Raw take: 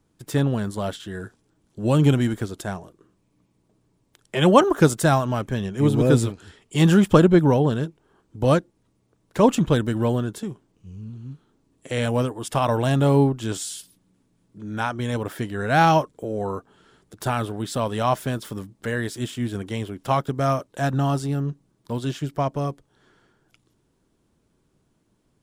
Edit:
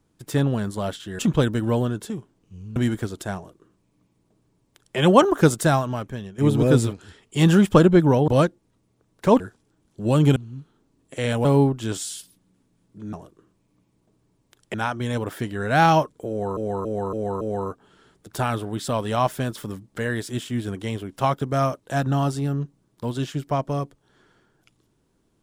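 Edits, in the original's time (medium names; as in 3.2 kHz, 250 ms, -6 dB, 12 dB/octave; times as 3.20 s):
1.19–2.15 s: swap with 9.52–11.09 s
2.75–4.36 s: copy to 14.73 s
5.01–5.77 s: fade out, to -12 dB
7.67–8.40 s: delete
12.18–13.05 s: delete
16.28–16.56 s: loop, 5 plays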